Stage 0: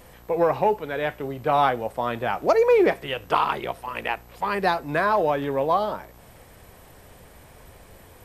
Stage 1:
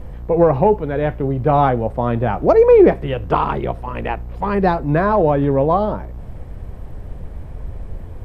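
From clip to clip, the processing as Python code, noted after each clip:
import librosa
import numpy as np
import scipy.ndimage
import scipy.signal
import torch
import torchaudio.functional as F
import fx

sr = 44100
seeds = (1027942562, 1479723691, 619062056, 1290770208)

y = fx.tilt_eq(x, sr, slope=-4.5)
y = y * 10.0 ** (3.0 / 20.0)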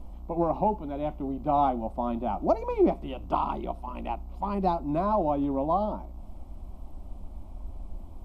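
y = fx.fixed_phaser(x, sr, hz=460.0, stages=6)
y = y * 10.0 ** (-7.5 / 20.0)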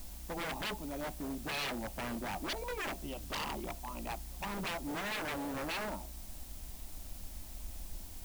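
y = 10.0 ** (-27.5 / 20.0) * (np.abs((x / 10.0 ** (-27.5 / 20.0) + 3.0) % 4.0 - 2.0) - 1.0)
y = fx.dmg_noise_colour(y, sr, seeds[0], colour='white', level_db=-53.0)
y = fx.high_shelf(y, sr, hz=3400.0, db=8.0)
y = y * 10.0 ** (-6.5 / 20.0)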